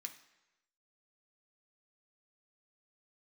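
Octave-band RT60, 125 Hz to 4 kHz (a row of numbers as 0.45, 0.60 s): 0.95, 0.85, 1.0, 1.0, 1.0, 0.90 s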